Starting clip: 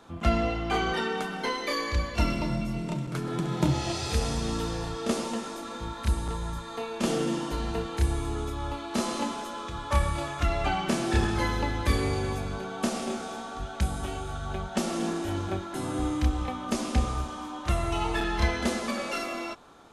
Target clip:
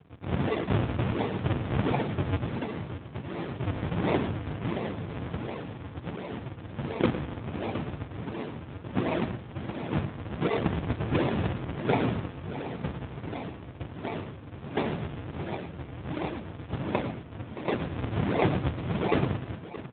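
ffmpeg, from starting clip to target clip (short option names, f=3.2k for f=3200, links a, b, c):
-af "highpass=f=440:p=1,highshelf=f=1.6k:t=q:w=1.5:g=12,aresample=11025,acrusher=samples=33:mix=1:aa=0.000001:lfo=1:lforange=52.8:lforate=1.4,aresample=44100,aecho=1:1:111|622:0.251|0.188" -ar 8000 -c:a libopencore_amrnb -b:a 10200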